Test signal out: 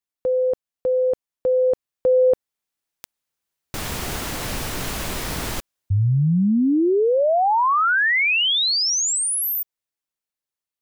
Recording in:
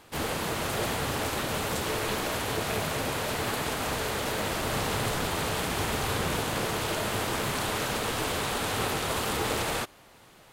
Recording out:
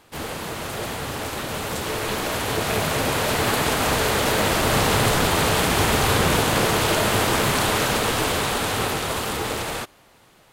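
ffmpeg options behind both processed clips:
ffmpeg -i in.wav -af "dynaudnorm=framelen=400:gausssize=13:maxgain=10dB" out.wav

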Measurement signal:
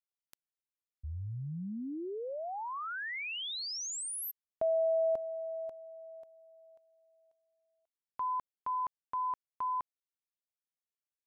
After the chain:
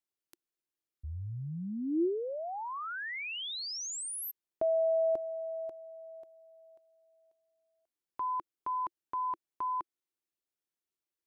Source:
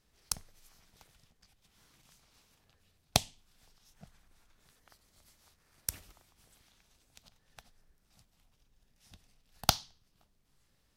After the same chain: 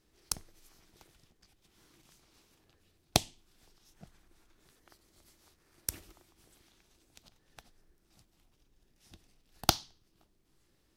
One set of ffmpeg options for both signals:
ffmpeg -i in.wav -af "equalizer=frequency=340:width_type=o:width=0.52:gain=12" out.wav

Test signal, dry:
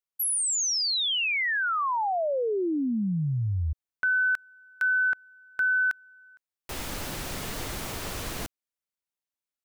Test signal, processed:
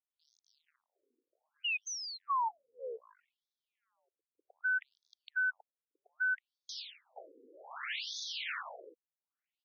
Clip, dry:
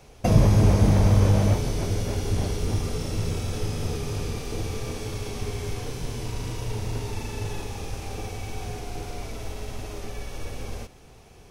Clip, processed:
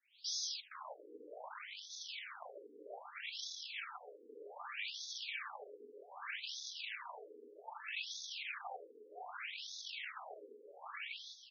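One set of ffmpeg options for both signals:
ffmpeg -i in.wav -filter_complex "[0:a]aphaser=in_gain=1:out_gain=1:delay=1:decay=0.26:speed=1.2:type=sinusoidal,acrossover=split=340|4100[link_01][link_02][link_03];[link_01]adelay=360[link_04];[link_02]adelay=470[link_05];[link_04][link_05][link_03]amix=inputs=3:normalize=0,asplit=2[link_06][link_07];[link_07]volume=14.5dB,asoftclip=hard,volume=-14.5dB,volume=-7dB[link_08];[link_06][link_08]amix=inputs=2:normalize=0,acompressor=threshold=-29dB:ratio=5:attack=1.9:release=25:knee=1:detection=peak,acrossover=split=490 5700:gain=0.141 1 0.178[link_09][link_10][link_11];[link_09][link_10][link_11]amix=inputs=3:normalize=0,acrossover=split=390|1200[link_12][link_13][link_14];[link_14]aeval=exprs='0.0631*sin(PI/2*2.51*val(0)/0.0631)':channel_layout=same[link_15];[link_12][link_13][link_15]amix=inputs=3:normalize=0,afftfilt=real='re*between(b*sr/1024,350*pow(4800/350,0.5+0.5*sin(2*PI*0.64*pts/sr))/1.41,350*pow(4800/350,0.5+0.5*sin(2*PI*0.64*pts/sr))*1.41)':imag='im*between(b*sr/1024,350*pow(4800/350,0.5+0.5*sin(2*PI*0.64*pts/sr))/1.41,350*pow(4800/350,0.5+0.5*sin(2*PI*0.64*pts/sr))*1.41)':win_size=1024:overlap=0.75,volume=-5.5dB" out.wav

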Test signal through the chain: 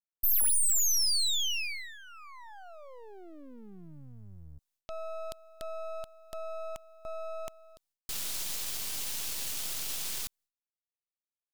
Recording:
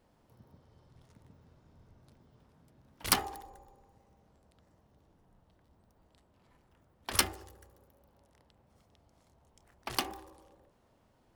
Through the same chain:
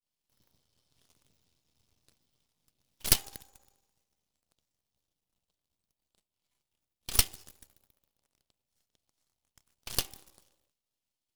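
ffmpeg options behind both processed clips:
ffmpeg -i in.wav -af "agate=range=-33dB:threshold=-58dB:ratio=3:detection=peak,aexciter=amount=5.6:drive=8.9:freq=2400,aeval=exprs='max(val(0),0)':channel_layout=same,volume=-11dB" out.wav

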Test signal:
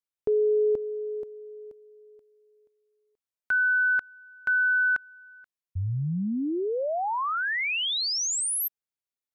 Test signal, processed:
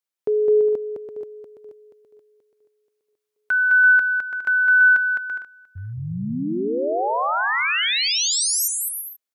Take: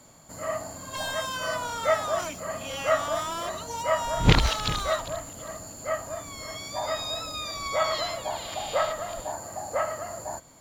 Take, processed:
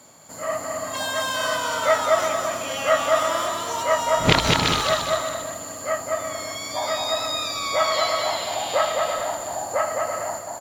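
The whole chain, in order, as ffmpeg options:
ffmpeg -i in.wav -filter_complex "[0:a]highpass=frequency=260:poles=1,asplit=2[link_01][link_02];[link_02]aecho=0:1:210|336|411.6|457|484.2:0.631|0.398|0.251|0.158|0.1[link_03];[link_01][link_03]amix=inputs=2:normalize=0,volume=4.5dB" out.wav

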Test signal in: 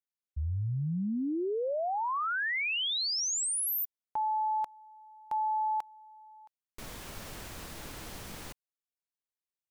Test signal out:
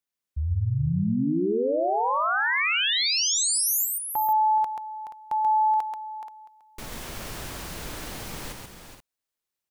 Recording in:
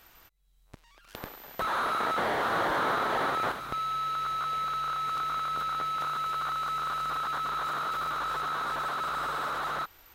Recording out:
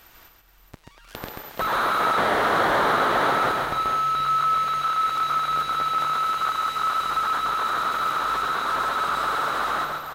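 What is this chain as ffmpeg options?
ffmpeg -i in.wav -af "aecho=1:1:134|425|479:0.631|0.355|0.237,volume=5.5dB" out.wav

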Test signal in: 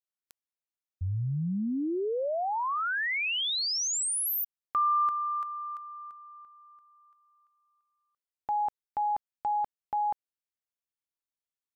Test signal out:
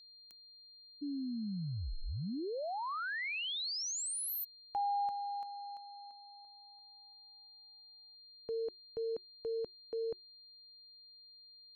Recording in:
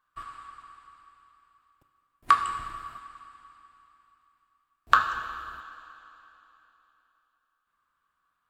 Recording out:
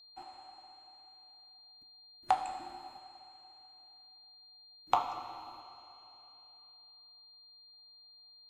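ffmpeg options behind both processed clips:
ffmpeg -i in.wav -af "afreqshift=-380,aeval=exprs='val(0)+0.00447*sin(2*PI*4200*n/s)':channel_layout=same,volume=-8.5dB" out.wav

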